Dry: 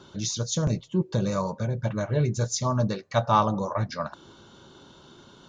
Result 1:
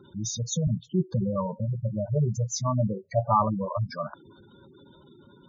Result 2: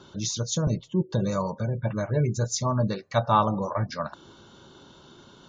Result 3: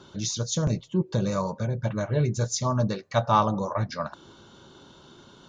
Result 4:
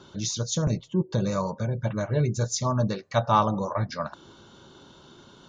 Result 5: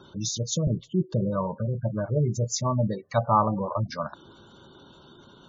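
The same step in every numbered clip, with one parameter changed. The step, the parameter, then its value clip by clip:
spectral gate, under each frame's peak: -10, -35, -60, -45, -20 dB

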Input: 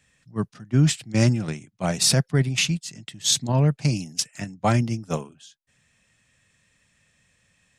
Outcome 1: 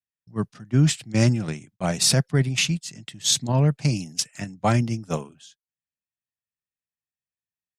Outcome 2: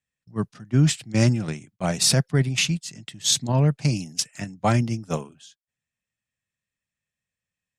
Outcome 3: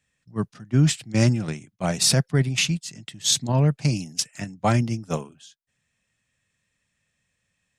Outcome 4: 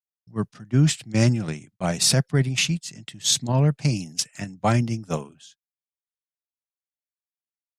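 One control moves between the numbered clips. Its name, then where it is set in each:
gate, range: -38, -24, -10, -55 dB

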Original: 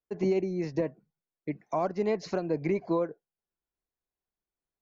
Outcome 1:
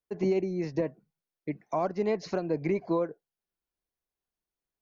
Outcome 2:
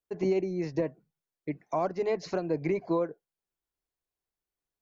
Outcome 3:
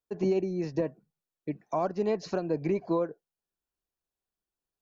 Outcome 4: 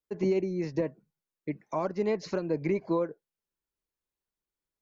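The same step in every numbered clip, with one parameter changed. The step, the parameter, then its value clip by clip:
notch, frequency: 7500, 210, 2100, 720 Hz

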